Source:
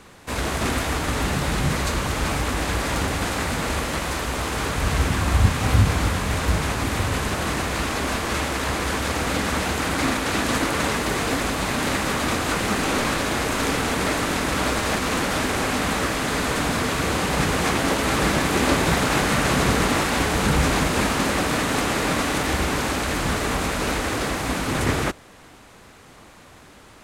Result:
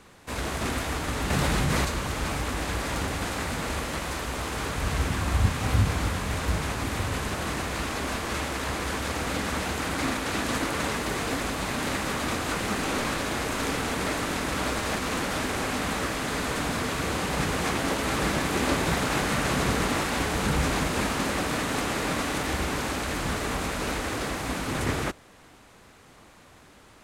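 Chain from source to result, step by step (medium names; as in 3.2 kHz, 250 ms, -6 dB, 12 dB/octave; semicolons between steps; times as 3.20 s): 1.30–1.85 s: level flattener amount 100%; trim -5.5 dB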